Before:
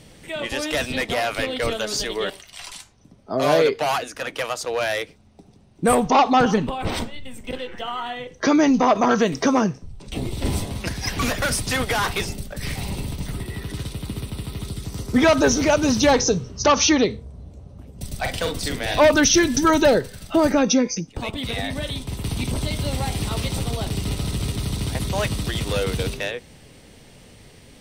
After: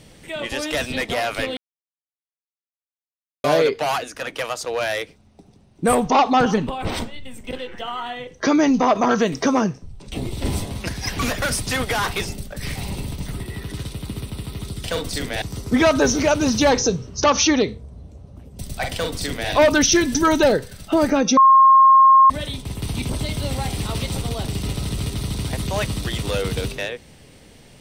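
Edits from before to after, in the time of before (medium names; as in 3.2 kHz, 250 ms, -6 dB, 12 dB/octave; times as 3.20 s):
1.57–3.44 s: mute
18.34–18.92 s: copy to 14.84 s
20.79–21.72 s: bleep 1.07 kHz -7.5 dBFS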